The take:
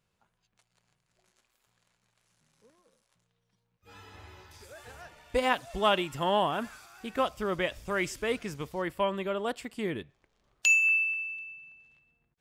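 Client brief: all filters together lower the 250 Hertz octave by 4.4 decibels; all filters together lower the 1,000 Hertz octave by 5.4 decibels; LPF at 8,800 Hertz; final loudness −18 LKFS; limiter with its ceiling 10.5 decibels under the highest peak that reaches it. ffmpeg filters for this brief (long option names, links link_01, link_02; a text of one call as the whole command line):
ffmpeg -i in.wav -af "lowpass=8800,equalizer=frequency=250:width_type=o:gain=-6,equalizer=frequency=1000:width_type=o:gain=-6.5,volume=15dB,alimiter=limit=-8.5dB:level=0:latency=1" out.wav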